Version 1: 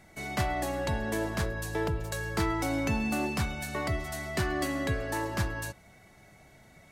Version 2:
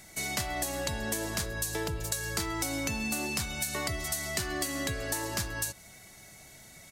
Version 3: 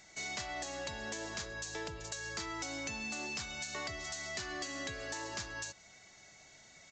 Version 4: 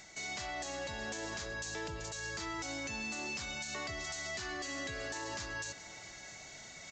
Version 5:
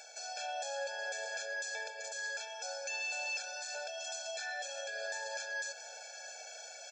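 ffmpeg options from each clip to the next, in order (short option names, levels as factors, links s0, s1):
-af "firequalizer=gain_entry='entry(900,0);entry(4200,11);entry(6700,15)':delay=0.05:min_phase=1,acompressor=threshold=0.0355:ratio=6"
-af "lowshelf=f=310:g=-9.5,aresample=16000,asoftclip=type=tanh:threshold=0.0447,aresample=44100,volume=0.631"
-af "alimiter=level_in=3.98:limit=0.0631:level=0:latency=1:release=26,volume=0.251,areverse,acompressor=mode=upward:threshold=0.00501:ratio=2.5,areverse,aecho=1:1:656:0.15,volume=1.41"
-filter_complex "[0:a]asplit=2[s0][s1];[s1]alimiter=level_in=6.31:limit=0.0631:level=0:latency=1:release=133,volume=0.158,volume=0.794[s2];[s0][s2]amix=inputs=2:normalize=0,afftfilt=real='re*eq(mod(floor(b*sr/1024/450),2),1)':imag='im*eq(mod(floor(b*sr/1024/450),2),1)':win_size=1024:overlap=0.75,volume=1.12"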